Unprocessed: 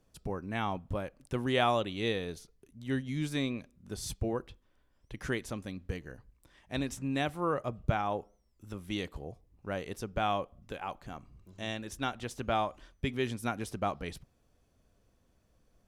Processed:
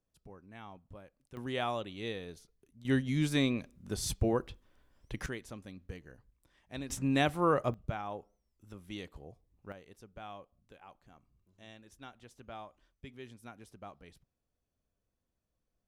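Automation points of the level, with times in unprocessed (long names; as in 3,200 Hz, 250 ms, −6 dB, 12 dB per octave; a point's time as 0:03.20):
−16 dB
from 0:01.37 −7 dB
from 0:02.85 +3.5 dB
from 0:05.26 −7.5 dB
from 0:06.90 +3.5 dB
from 0:07.74 −7.5 dB
from 0:09.72 −16 dB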